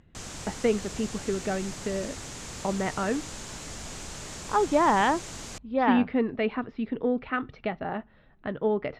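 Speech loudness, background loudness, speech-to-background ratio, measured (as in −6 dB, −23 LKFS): −28.0 LKFS, −38.5 LKFS, 10.5 dB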